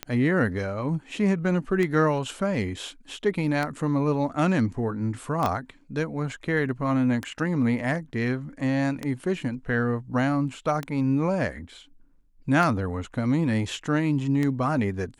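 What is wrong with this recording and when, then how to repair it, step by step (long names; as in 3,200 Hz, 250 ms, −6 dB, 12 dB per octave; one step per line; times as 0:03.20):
scratch tick 33 1/3 rpm −14 dBFS
0:05.46: click −12 dBFS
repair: click removal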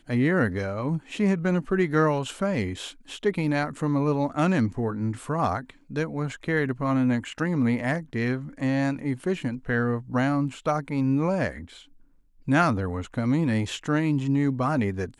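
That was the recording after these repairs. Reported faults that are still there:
0:05.46: click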